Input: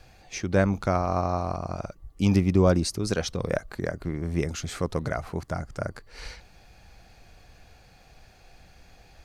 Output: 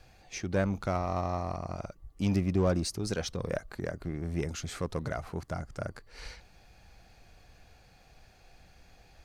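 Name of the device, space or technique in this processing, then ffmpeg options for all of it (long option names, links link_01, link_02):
parallel distortion: -filter_complex "[0:a]asplit=2[link_01][link_02];[link_02]asoftclip=type=hard:threshold=-25.5dB,volume=-4.5dB[link_03];[link_01][link_03]amix=inputs=2:normalize=0,volume=-8.5dB"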